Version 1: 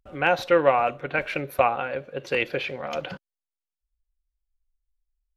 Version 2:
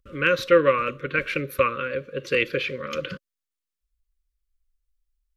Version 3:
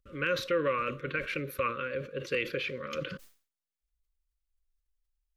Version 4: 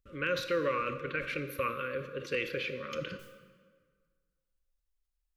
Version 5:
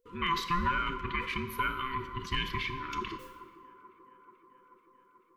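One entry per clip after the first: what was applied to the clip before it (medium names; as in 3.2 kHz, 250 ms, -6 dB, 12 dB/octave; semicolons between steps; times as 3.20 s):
elliptic band-stop 540–1100 Hz, stop band 50 dB; trim +3 dB
peak limiter -13.5 dBFS, peak gain reduction 7 dB; decay stretcher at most 140 dB/s; trim -6.5 dB
reverberation RT60 1.7 s, pre-delay 23 ms, DRR 10 dB; trim -2 dB
every band turned upside down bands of 500 Hz; feedback echo behind a band-pass 435 ms, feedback 73%, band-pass 560 Hz, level -16.5 dB; trim +1.5 dB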